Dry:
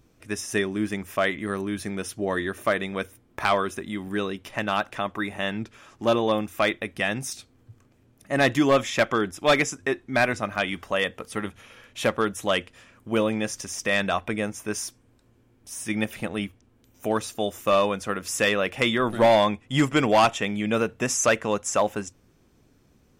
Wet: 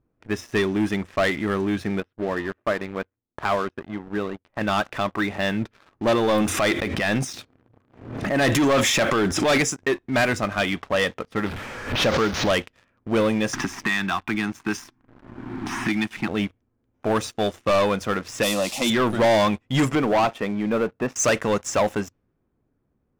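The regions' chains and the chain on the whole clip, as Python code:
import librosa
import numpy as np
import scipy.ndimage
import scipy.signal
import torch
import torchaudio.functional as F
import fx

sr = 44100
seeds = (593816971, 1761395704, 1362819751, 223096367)

y = fx.chain(x, sr, fx.air_absorb(metres=310.0),
    fx.power_curve(exponent=1.4), at=(2.0, 4.61))
y = fx.chain(y, sr, fx.highpass(hz=110.0, slope=6),
    fx.transient(attack_db=-5, sustain_db=9),
    fx.pre_swell(db_per_s=63.0), at=(6.29, 9.58))
y = fx.chain(y, sr, fx.delta_mod(bps=32000, step_db=-31.0),
    fx.pre_swell(db_per_s=84.0), at=(11.46, 12.5))
y = fx.chain(y, sr, fx.cheby1_bandstop(low_hz=340.0, high_hz=840.0, order=2),
    fx.peak_eq(hz=71.0, db=-8.0, octaves=1.8),
    fx.band_squash(depth_pct=100), at=(13.53, 16.28))
y = fx.chain(y, sr, fx.crossing_spikes(level_db=-19.0),
    fx.fixed_phaser(hz=430.0, stages=6), at=(18.43, 18.9))
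y = fx.chain(y, sr, fx.highpass(hz=210.0, slope=6),
    fx.spacing_loss(db_at_10k=35), at=(19.95, 21.16))
y = fx.env_lowpass(y, sr, base_hz=1500.0, full_db=-18.5)
y = fx.peak_eq(y, sr, hz=2700.0, db=-2.0, octaves=0.77)
y = fx.leveller(y, sr, passes=3)
y = y * librosa.db_to_amplitude(-5.0)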